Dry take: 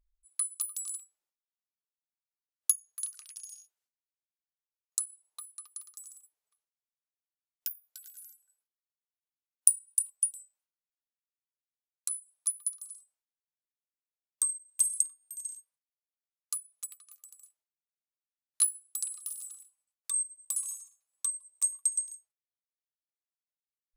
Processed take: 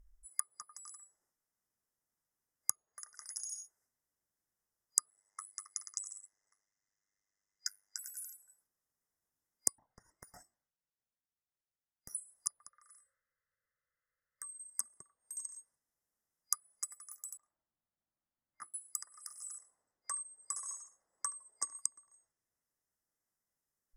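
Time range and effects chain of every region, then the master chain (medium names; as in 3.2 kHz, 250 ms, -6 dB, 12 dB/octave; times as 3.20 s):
5.10–7.99 s: resonant low-pass 6.4 kHz, resonance Q 2.9 + peaking EQ 2.3 kHz +14.5 dB 0.87 oct + AM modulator 100 Hz, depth 95%
9.78–12.15 s: median filter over 5 samples + compression 16:1, threshold -51 dBFS + flange 1.4 Hz, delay 1 ms, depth 1.1 ms, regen -55%
12.69–14.59 s: FFT filter 110 Hz 0 dB, 340 Hz -17 dB, 530 Hz +6 dB, 770 Hz -20 dB, 1.3 kHz +8 dB, 2 kHz +8 dB, 6.1 kHz -14 dB + compression 3:1, threshold -54 dBFS
17.37–18.74 s: low-pass 1.3 kHz + peaking EQ 430 Hz -13.5 dB 0.22 oct
19.58–21.75 s: low-pass 4.7 kHz + peaking EQ 500 Hz +8 dB 2.3 oct + delay 73 ms -19.5 dB
whole clip: low-pass that closes with the level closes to 1.1 kHz, closed at -30 dBFS; FFT band-reject 2.1–4.9 kHz; bass shelf 360 Hz +6.5 dB; trim +7.5 dB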